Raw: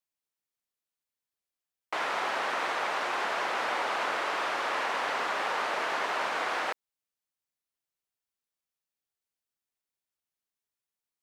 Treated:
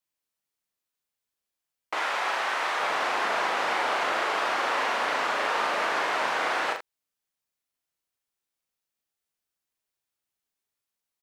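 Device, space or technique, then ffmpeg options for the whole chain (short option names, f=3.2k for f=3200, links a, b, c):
slapback doubling: -filter_complex "[0:a]asettb=1/sr,asplit=3[a][b][c];[a]atrim=end=1.954[d];[b]atrim=start=1.95:end=2.8,asetpts=PTS-STARTPTS,afade=t=in:d=0.004:c=qsin,afade=t=out:st=0.846:d=0.004:c=qsin,highpass=f=630:p=1[e];[c]atrim=start=2.796[f];[d][e]acrossfade=d=0.004:c1=hsin:c2=qsin[g];[g][f]acrossfade=d=0.004:c1=qsin:c2=hsin,asplit=3[h][i][j];[i]adelay=38,volume=-3.5dB[k];[j]adelay=81,volume=-9.5dB[l];[h][k][l]amix=inputs=3:normalize=0,volume=2dB"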